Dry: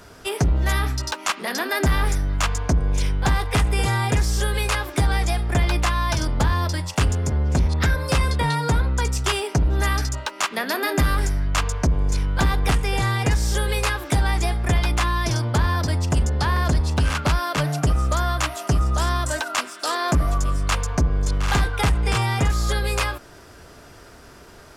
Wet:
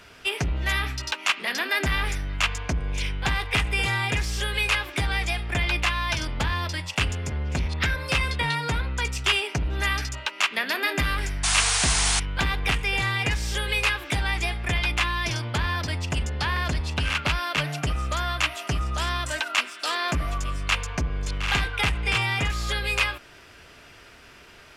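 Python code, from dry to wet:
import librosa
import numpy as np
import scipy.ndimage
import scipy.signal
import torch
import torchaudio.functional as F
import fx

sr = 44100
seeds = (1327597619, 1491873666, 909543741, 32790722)

y = fx.peak_eq(x, sr, hz=2600.0, db=14.0, octaves=1.3)
y = fx.spec_paint(y, sr, seeds[0], shape='noise', start_s=11.43, length_s=0.77, low_hz=650.0, high_hz=10000.0, level_db=-16.0)
y = F.gain(torch.from_numpy(y), -7.5).numpy()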